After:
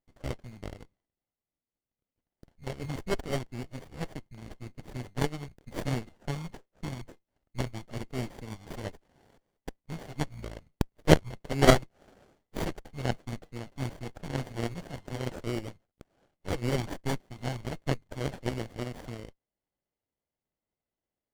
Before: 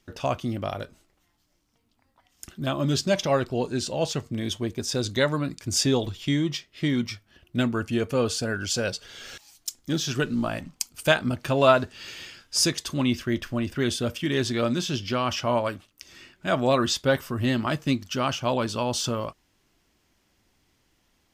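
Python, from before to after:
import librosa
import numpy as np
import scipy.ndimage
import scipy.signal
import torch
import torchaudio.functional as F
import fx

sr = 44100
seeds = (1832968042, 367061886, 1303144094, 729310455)

y = fx.band_swap(x, sr, width_hz=2000)
y = fx.peak_eq(y, sr, hz=560.0, db=9.0, octaves=1.8)
y = fx.cheby_harmonics(y, sr, harmonics=(2, 3, 5), levels_db=(-7, -10, -41), full_scale_db=-3.5)
y = fx.running_max(y, sr, window=33)
y = y * 10.0 ** (-3.0 / 20.0)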